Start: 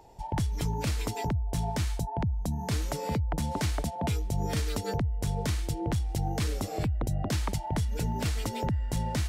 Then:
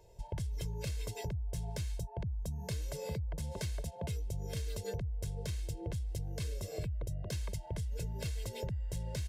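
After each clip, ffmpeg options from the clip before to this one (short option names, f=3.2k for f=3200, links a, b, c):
-af "equalizer=f=1.1k:t=o:w=1.1:g=-10.5,aecho=1:1:1.9:0.94,acompressor=threshold=-28dB:ratio=6,volume=-6.5dB"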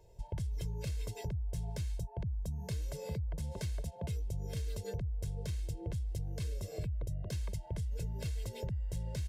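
-af "lowshelf=f=330:g=4.5,volume=-3.5dB"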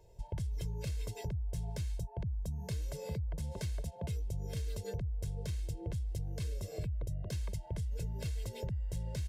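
-af anull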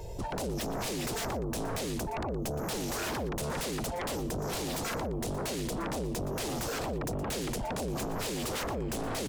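-af "alimiter=level_in=9dB:limit=-24dB:level=0:latency=1:release=32,volume=-9dB,aeval=exprs='0.0237*sin(PI/2*5.62*val(0)/0.0237)':c=same,aecho=1:1:118:0.178,volume=1.5dB"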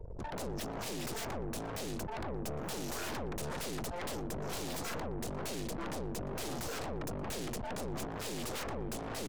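-filter_complex "[0:a]anlmdn=0.398,aeval=exprs='(tanh(63.1*val(0)+0.75)-tanh(0.75))/63.1':c=same,asplit=2[a][b];[b]adelay=816.3,volume=-28dB,highshelf=f=4k:g=-18.4[c];[a][c]amix=inputs=2:normalize=0"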